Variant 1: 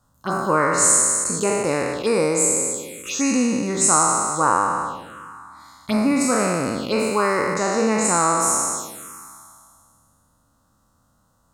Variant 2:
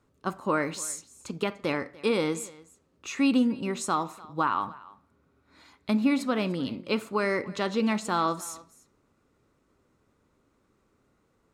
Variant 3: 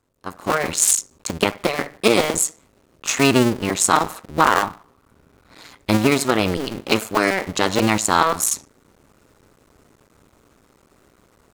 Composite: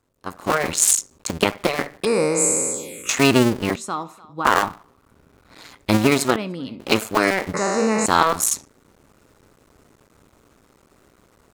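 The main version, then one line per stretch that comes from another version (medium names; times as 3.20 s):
3
2.05–3.09 s: from 1
3.76–4.45 s: from 2
6.36–6.80 s: from 2
7.54–8.06 s: from 1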